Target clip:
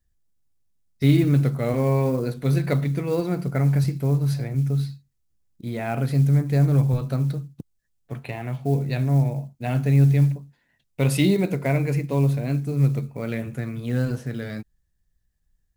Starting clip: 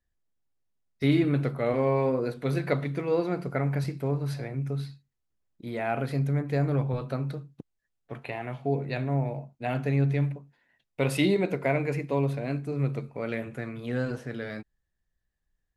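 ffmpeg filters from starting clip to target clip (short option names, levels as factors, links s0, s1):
-af "acrusher=bits=8:mode=log:mix=0:aa=0.000001,bass=f=250:g=10,treble=f=4000:g=8"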